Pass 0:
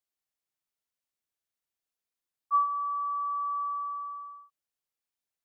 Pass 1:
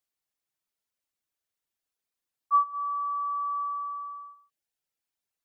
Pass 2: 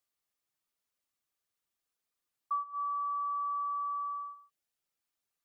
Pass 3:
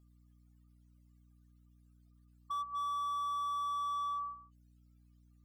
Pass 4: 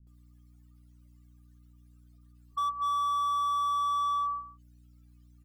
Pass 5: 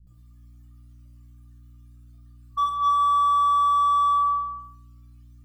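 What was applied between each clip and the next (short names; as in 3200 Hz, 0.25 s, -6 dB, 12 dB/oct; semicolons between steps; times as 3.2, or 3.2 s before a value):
reverb removal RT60 0.57 s; gain +3 dB
small resonant body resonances 1200 Hz, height 8 dB; compressor 6:1, threshold -33 dBFS, peak gain reduction 16.5 dB
spectral contrast raised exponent 3.6; hum 60 Hz, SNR 26 dB; slew limiter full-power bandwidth 17 Hz; gain +1.5 dB
bands offset in time lows, highs 70 ms, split 260 Hz; gain +7.5 dB
reverb RT60 0.85 s, pre-delay 19 ms, DRR -1 dB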